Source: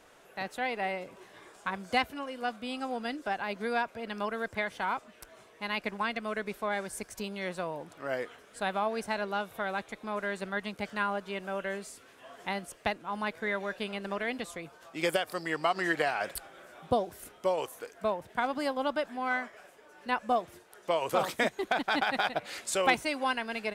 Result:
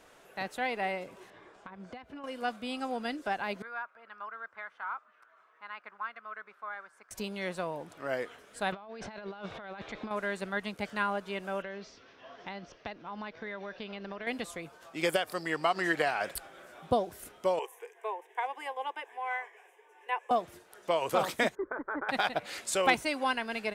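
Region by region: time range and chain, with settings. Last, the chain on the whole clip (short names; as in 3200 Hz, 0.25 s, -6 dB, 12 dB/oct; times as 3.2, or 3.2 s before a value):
1.3–2.24 compressor 16:1, threshold -39 dBFS + tape spacing loss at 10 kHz 22 dB + mismatched tape noise reduction encoder only
3.62–7.11 band-pass 1300 Hz, Q 3.9 + upward compressor, threshold -58 dBFS
8.72–10.11 LPF 5100 Hz 24 dB/oct + negative-ratio compressor -43 dBFS
11.62–14.27 Chebyshev low-pass 5800 Hz, order 5 + compressor 3:1, threshold -38 dBFS
17.59–20.31 steep high-pass 390 Hz 48 dB/oct + high shelf 9000 Hz -9 dB + fixed phaser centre 900 Hz, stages 8
21.55–22.09 Bessel low-pass 1200 Hz, order 8 + fixed phaser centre 740 Hz, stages 6
whole clip: dry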